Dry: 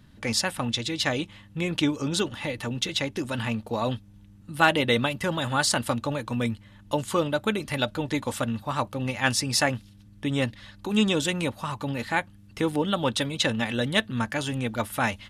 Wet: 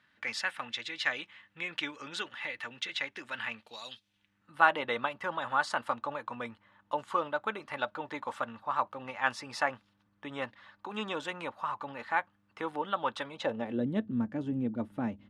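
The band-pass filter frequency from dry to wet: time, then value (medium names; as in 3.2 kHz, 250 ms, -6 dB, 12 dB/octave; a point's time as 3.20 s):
band-pass filter, Q 1.6
3.56 s 1.8 kHz
3.83 s 5.6 kHz
4.59 s 1.1 kHz
13.28 s 1.1 kHz
13.85 s 260 Hz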